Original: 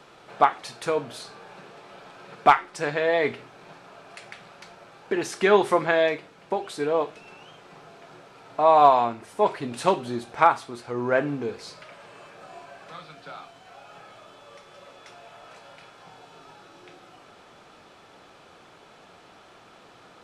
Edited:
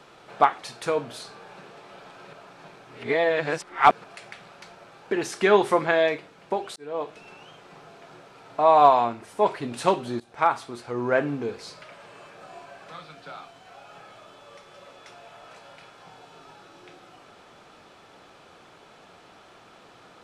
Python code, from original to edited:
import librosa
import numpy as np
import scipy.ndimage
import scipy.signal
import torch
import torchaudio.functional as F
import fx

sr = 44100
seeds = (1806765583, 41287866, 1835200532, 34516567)

y = fx.edit(x, sr, fx.reverse_span(start_s=2.33, length_s=1.71),
    fx.fade_in_span(start_s=6.76, length_s=0.44),
    fx.fade_in_from(start_s=10.2, length_s=0.42, floor_db=-17.5), tone=tone)